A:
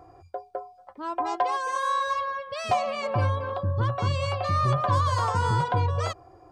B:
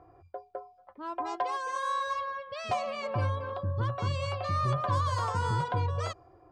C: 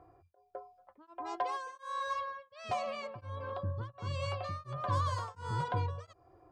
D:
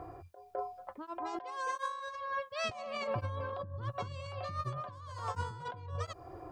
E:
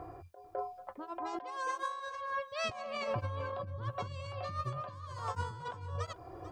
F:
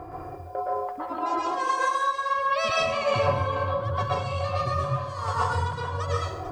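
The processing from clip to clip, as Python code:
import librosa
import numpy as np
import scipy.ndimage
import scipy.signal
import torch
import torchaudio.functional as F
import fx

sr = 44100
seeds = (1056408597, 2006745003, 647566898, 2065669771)

y1 = fx.env_lowpass(x, sr, base_hz=2600.0, full_db=-21.5)
y1 = fx.peak_eq(y1, sr, hz=790.0, db=-3.5, octaves=0.26)
y1 = F.gain(torch.from_numpy(y1), -5.0).numpy()
y2 = y1 * np.abs(np.cos(np.pi * 1.4 * np.arange(len(y1)) / sr))
y2 = F.gain(torch.from_numpy(y2), -3.0).numpy()
y3 = fx.over_compress(y2, sr, threshold_db=-46.0, ratio=-1.0)
y3 = F.gain(torch.from_numpy(y3), 6.0).numpy()
y4 = y3 + 10.0 ** (-15.5 / 20.0) * np.pad(y3, (int(443 * sr / 1000.0), 0))[:len(y3)]
y5 = fx.rev_plate(y4, sr, seeds[0], rt60_s=0.73, hf_ratio=0.8, predelay_ms=105, drr_db=-5.5)
y5 = F.gain(torch.from_numpy(y5), 6.5).numpy()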